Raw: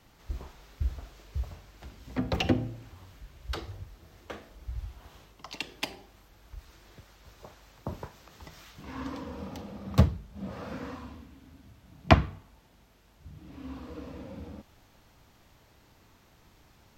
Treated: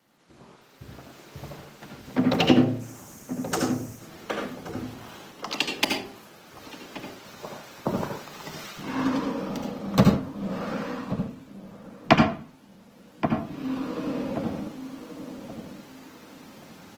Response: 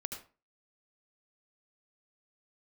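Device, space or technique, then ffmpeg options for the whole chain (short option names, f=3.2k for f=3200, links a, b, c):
far-field microphone of a smart speaker: -filter_complex "[0:a]asplit=3[a][b][c];[a]afade=t=out:st=2.79:d=0.02[d];[b]highshelf=f=5.1k:t=q:w=3:g=8.5,afade=t=in:st=2.79:d=0.02,afade=t=out:st=3.97:d=0.02[e];[c]afade=t=in:st=3.97:d=0.02[f];[d][e][f]amix=inputs=3:normalize=0,asplit=2[g][h];[h]adelay=1126,lowpass=f=890:p=1,volume=-9.5dB,asplit=2[i][j];[j]adelay=1126,lowpass=f=890:p=1,volume=0.33,asplit=2[k][l];[l]adelay=1126,lowpass=f=890:p=1,volume=0.33,asplit=2[m][n];[n]adelay=1126,lowpass=f=890:p=1,volume=0.33[o];[g][i][k][m][o]amix=inputs=5:normalize=0[p];[1:a]atrim=start_sample=2205[q];[p][q]afir=irnorm=-1:irlink=0,highpass=f=150:w=0.5412,highpass=f=150:w=1.3066,dynaudnorm=f=230:g=9:m=14dB,volume=-1dB" -ar 48000 -c:a libopus -b:a 20k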